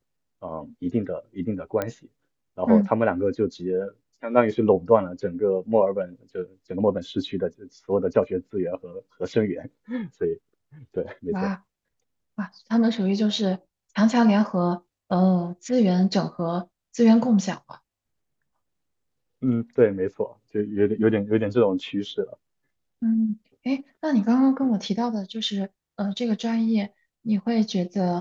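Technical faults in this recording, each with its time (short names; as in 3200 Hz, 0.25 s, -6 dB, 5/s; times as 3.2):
1.82 pop -13 dBFS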